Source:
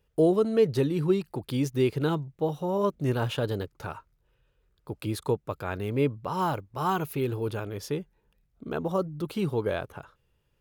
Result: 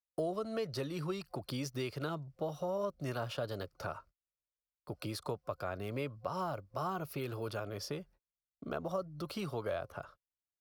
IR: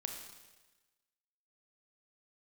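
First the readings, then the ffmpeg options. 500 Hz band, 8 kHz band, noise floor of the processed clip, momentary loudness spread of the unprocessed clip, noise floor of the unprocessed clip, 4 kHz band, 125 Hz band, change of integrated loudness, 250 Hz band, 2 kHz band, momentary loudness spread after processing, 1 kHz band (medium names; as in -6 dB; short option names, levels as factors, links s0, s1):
-11.0 dB, -5.5 dB, under -85 dBFS, 12 LU, -72 dBFS, -5.5 dB, -11.5 dB, -11.0 dB, -13.0 dB, -7.5 dB, 7 LU, -8.5 dB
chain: -filter_complex "[0:a]superequalizer=8b=2.51:10b=1.78:14b=2.24,agate=range=0.0158:threshold=0.00316:ratio=16:detection=peak,acrossover=split=100|780[s0][s1][s2];[s0]acompressor=threshold=0.00398:ratio=4[s3];[s1]acompressor=threshold=0.0178:ratio=4[s4];[s2]acompressor=threshold=0.0141:ratio=4[s5];[s3][s4][s5]amix=inputs=3:normalize=0,volume=0.631"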